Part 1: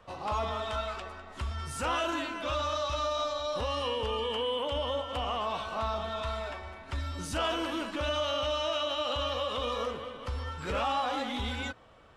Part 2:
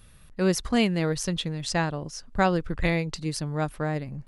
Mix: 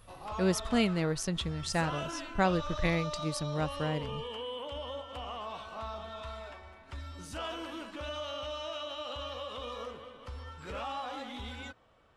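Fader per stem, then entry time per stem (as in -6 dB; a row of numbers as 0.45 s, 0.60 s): -8.0 dB, -5.0 dB; 0.00 s, 0.00 s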